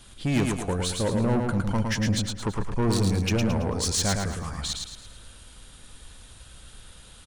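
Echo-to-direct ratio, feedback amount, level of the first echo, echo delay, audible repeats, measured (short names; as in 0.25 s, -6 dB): -3.0 dB, 40%, -4.0 dB, 0.11 s, 4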